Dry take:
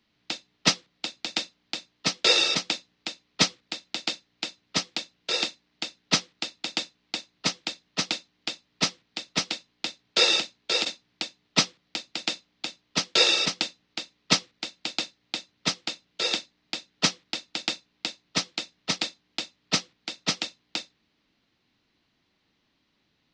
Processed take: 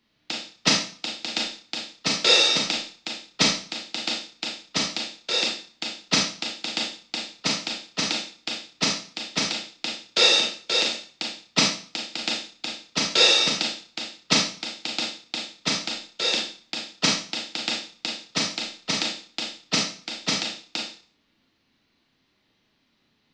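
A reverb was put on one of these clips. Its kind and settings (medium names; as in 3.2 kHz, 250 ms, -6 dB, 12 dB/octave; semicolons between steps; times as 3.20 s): Schroeder reverb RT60 0.43 s, combs from 27 ms, DRR -0.5 dB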